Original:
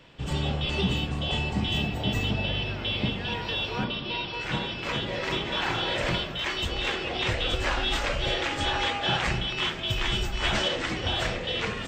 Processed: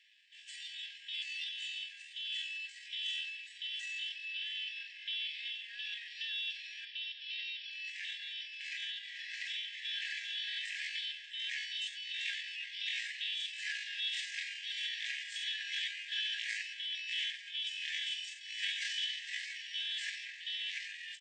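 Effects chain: feedback echo 0.365 s, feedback 27%, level -18 dB; tempo 0.56×; FFT band-pass 1600–11000 Hz; gain -8 dB

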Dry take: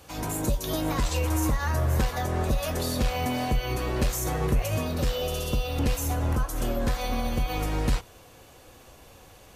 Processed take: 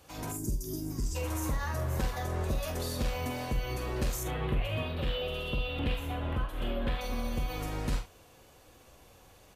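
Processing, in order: 0.32–1.16 spectral gain 450–4600 Hz -18 dB; 4.23–7.01 resonant high shelf 4400 Hz -11.5 dB, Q 3; early reflections 46 ms -8 dB, 73 ms -16 dB; gain -7 dB

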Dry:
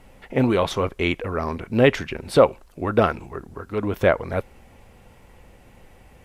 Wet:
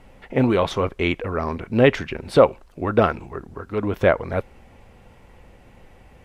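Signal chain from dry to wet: high shelf 7100 Hz -9.5 dB; gain +1 dB

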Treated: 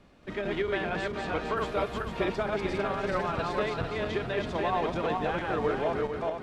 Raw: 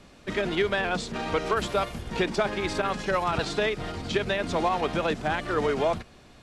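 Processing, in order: regenerating reverse delay 0.225 s, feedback 56%, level -1 dB; bell 8000 Hz -10 dB 2.1 oct; gain -5.5 dB

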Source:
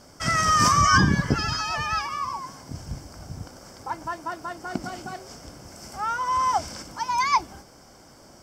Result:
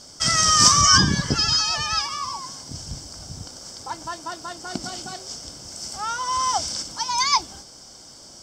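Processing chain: band shelf 5200 Hz +12.5 dB; gain -1 dB

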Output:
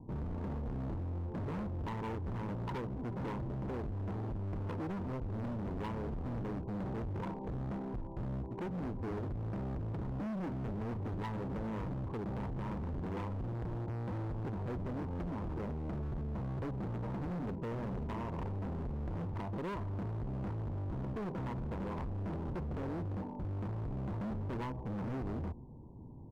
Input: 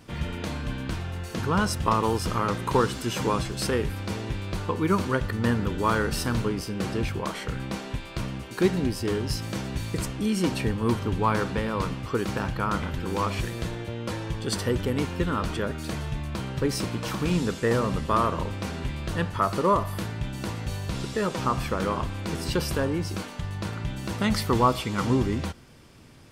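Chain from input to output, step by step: compressor 6:1, threshold -27 dBFS, peak gain reduction 11.5 dB; steep low-pass 970 Hz 96 dB/oct; comb 0.8 ms, depth 54%; hard clip -35.5 dBFS, distortion -6 dB; gain -1 dB

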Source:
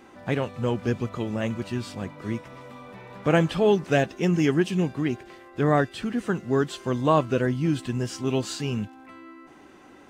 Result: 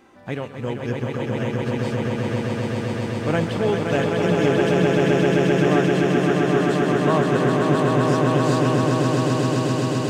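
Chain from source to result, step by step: swelling echo 0.13 s, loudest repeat 8, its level -3.5 dB; gain -2.5 dB

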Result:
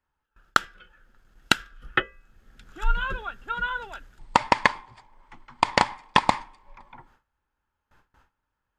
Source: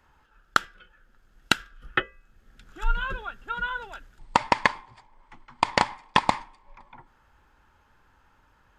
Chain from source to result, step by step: gate with hold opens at -50 dBFS; gain +1.5 dB

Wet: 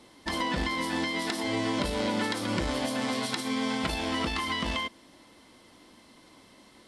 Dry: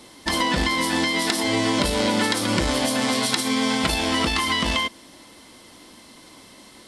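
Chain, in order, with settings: high shelf 4500 Hz -7.5 dB; gain -7 dB

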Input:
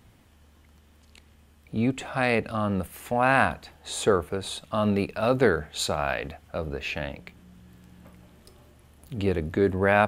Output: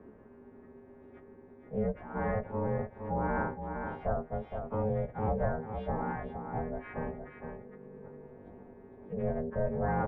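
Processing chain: frequency quantiser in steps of 2 st; LPF 1500 Hz 24 dB/oct; bell 1100 Hz -11 dB 0.77 oct; in parallel at -1 dB: limiter -21 dBFS, peak gain reduction 10 dB; on the sum: formant shift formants -5 st; ring modulator 320 Hz; on a send: echo 0.463 s -9 dB; on the sum: three-band squash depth 40%; gain -6.5 dB

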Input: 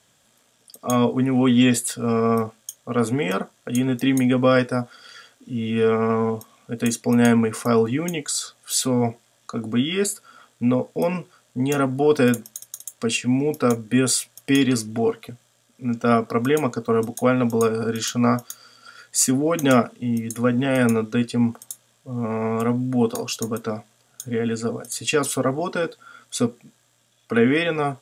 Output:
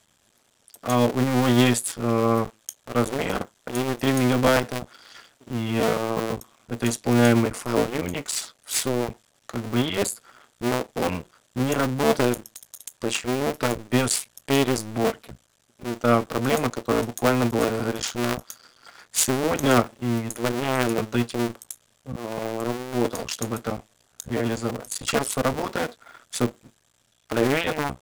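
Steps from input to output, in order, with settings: cycle switcher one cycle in 2, muted

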